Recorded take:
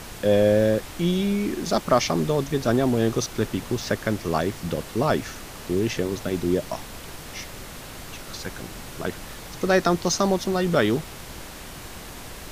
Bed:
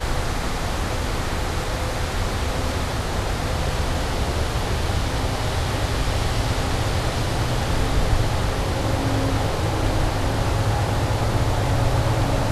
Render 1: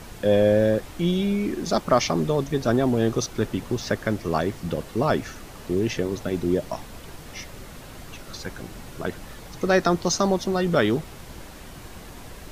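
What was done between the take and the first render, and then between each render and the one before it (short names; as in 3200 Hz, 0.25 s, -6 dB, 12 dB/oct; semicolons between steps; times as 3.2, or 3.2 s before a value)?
denoiser 6 dB, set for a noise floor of -39 dBFS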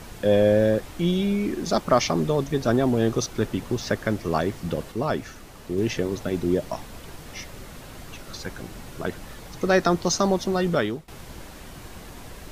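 4.92–5.78 gain -3.5 dB; 10.66–11.08 fade out, to -21 dB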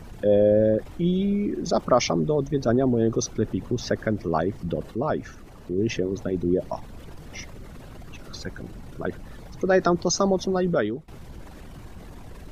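formant sharpening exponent 1.5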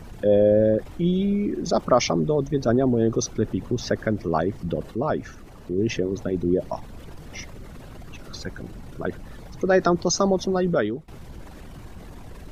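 gain +1 dB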